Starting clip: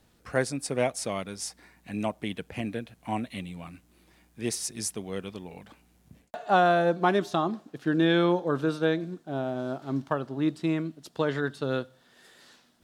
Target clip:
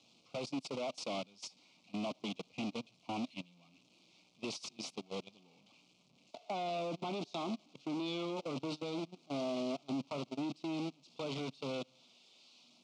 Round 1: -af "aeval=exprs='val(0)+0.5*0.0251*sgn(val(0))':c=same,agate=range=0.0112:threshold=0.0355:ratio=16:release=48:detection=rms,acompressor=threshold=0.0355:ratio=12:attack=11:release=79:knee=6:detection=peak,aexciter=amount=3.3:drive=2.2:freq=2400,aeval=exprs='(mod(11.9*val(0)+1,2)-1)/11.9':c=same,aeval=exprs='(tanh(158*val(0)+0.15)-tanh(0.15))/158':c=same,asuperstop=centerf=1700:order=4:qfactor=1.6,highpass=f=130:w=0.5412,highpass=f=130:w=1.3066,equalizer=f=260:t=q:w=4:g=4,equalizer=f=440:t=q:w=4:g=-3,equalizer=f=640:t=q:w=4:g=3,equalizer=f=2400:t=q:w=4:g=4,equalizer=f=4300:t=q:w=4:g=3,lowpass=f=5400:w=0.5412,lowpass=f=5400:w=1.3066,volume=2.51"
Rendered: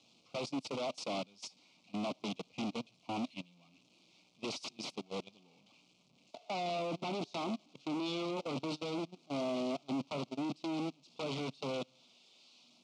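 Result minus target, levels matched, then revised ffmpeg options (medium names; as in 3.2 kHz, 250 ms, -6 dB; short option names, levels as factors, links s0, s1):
compression: peak gain reduction -9 dB
-af "aeval=exprs='val(0)+0.5*0.0251*sgn(val(0))':c=same,agate=range=0.0112:threshold=0.0355:ratio=16:release=48:detection=rms,acompressor=threshold=0.0112:ratio=12:attack=11:release=79:knee=6:detection=peak,aexciter=amount=3.3:drive=2.2:freq=2400,aeval=exprs='(mod(11.9*val(0)+1,2)-1)/11.9':c=same,aeval=exprs='(tanh(158*val(0)+0.15)-tanh(0.15))/158':c=same,asuperstop=centerf=1700:order=4:qfactor=1.6,highpass=f=130:w=0.5412,highpass=f=130:w=1.3066,equalizer=f=260:t=q:w=4:g=4,equalizer=f=440:t=q:w=4:g=-3,equalizer=f=640:t=q:w=4:g=3,equalizer=f=2400:t=q:w=4:g=4,equalizer=f=4300:t=q:w=4:g=3,lowpass=f=5400:w=0.5412,lowpass=f=5400:w=1.3066,volume=2.51"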